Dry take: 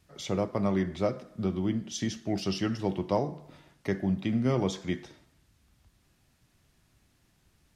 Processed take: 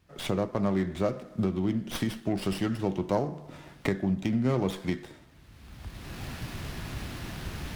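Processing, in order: recorder AGC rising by 23 dB/s; running maximum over 5 samples

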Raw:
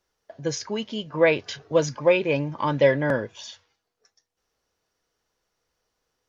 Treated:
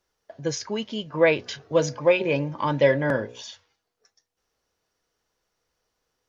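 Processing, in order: 1.35–3.42 de-hum 60.98 Hz, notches 15

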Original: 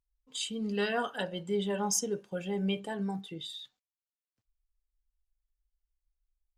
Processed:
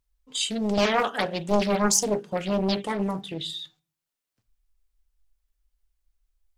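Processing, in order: shoebox room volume 220 m³, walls furnished, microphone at 0.32 m; Doppler distortion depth 0.97 ms; gain +8.5 dB

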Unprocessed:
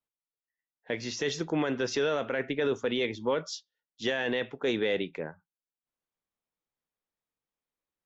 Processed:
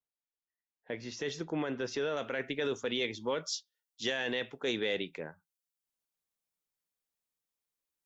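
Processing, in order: high shelf 3500 Hz -8 dB, from 1.12 s -2.5 dB, from 2.17 s +11.5 dB; gain -5.5 dB

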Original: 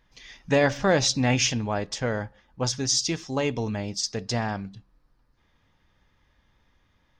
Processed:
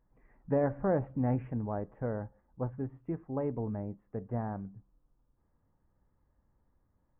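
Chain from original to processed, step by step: Gaussian blur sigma 7.4 samples; gain -6 dB

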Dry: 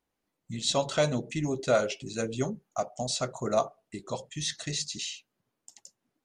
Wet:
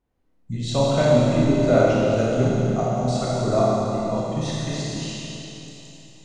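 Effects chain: tilt -3 dB/oct; Schroeder reverb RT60 3.4 s, combs from 25 ms, DRR -6.5 dB

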